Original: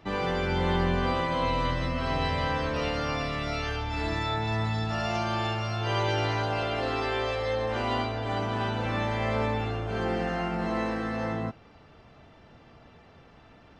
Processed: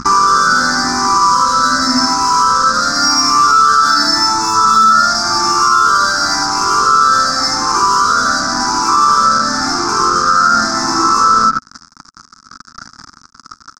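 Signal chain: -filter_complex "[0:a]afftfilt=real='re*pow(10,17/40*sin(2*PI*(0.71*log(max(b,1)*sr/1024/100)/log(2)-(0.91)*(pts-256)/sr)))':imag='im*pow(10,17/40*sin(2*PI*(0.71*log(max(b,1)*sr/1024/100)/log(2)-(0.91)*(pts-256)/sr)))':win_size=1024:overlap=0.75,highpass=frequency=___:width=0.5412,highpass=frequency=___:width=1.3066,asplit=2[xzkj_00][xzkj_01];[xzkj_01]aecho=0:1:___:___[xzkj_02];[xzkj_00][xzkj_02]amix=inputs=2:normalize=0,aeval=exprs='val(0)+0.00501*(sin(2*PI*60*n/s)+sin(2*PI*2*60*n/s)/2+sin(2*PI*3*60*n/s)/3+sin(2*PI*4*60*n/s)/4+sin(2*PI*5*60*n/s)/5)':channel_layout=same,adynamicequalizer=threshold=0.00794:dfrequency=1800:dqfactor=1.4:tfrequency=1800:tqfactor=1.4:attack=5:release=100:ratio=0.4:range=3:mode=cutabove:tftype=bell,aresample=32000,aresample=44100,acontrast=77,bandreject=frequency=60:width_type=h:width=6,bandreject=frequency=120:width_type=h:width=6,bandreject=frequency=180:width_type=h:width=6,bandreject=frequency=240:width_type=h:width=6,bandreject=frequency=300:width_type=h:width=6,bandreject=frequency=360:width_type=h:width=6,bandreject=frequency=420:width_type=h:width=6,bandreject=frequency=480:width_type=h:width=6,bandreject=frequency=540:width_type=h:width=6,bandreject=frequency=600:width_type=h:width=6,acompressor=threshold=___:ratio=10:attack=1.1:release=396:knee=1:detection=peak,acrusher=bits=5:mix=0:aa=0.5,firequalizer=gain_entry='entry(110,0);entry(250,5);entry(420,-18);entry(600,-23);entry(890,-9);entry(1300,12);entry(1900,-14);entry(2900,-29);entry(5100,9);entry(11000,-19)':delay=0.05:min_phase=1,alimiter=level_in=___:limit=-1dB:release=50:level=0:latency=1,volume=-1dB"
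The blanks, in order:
380, 380, 80, 0.266, -27dB, 24.5dB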